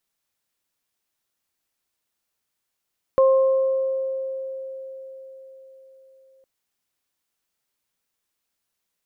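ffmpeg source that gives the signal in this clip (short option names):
-f lavfi -i "aevalsrc='0.251*pow(10,-3*t/4.69)*sin(2*PI*531*t)+0.075*pow(10,-3*t/1.6)*sin(2*PI*1062*t)':d=3.26:s=44100"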